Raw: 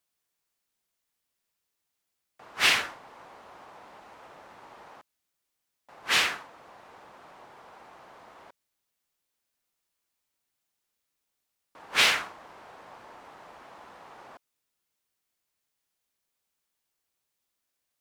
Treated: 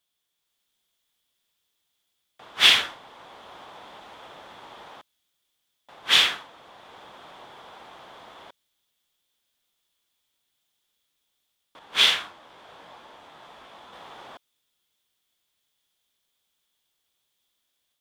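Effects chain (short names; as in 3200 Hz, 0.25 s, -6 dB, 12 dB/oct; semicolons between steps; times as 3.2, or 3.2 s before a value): bell 3400 Hz +13 dB 0.34 oct; AGC gain up to 4 dB; 11.79–13.93 detuned doubles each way 37 cents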